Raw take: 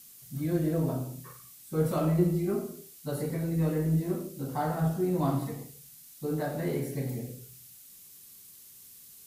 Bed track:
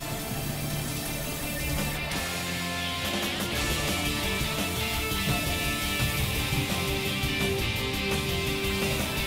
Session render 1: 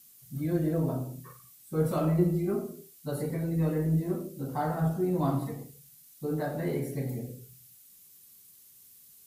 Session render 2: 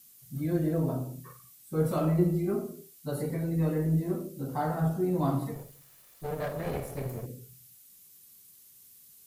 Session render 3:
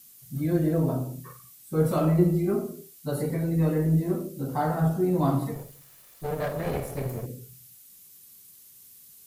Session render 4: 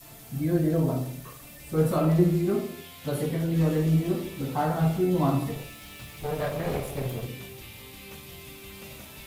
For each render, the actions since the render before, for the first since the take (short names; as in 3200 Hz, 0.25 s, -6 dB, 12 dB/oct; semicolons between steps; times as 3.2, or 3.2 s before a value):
denoiser 6 dB, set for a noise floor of -52 dBFS
5.55–7.26 minimum comb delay 1.7 ms
gain +4 dB
add bed track -16.5 dB